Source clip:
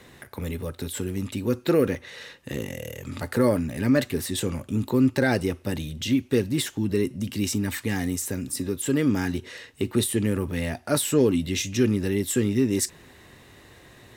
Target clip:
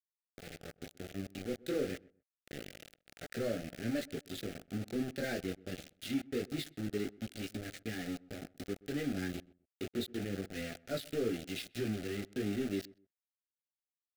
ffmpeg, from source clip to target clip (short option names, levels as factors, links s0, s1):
-filter_complex "[0:a]agate=range=0.0224:threshold=0.0141:ratio=3:detection=peak,highpass=f=170:p=1,equalizer=f=1100:t=o:w=0.65:g=-3.5,aresample=11025,asoftclip=type=tanh:threshold=0.126,aresample=44100,flanger=delay=17.5:depth=4.5:speed=0.26,aeval=exprs='val(0)*gte(abs(val(0)),0.0237)':c=same,asuperstop=centerf=1000:order=4:qfactor=1.7,asplit=2[s0][s1];[s1]adelay=127,lowpass=f=1100:p=1,volume=0.0891,asplit=2[s2][s3];[s3]adelay=127,lowpass=f=1100:p=1,volume=0.23[s4];[s2][s4]amix=inputs=2:normalize=0[s5];[s0][s5]amix=inputs=2:normalize=0,volume=0.473"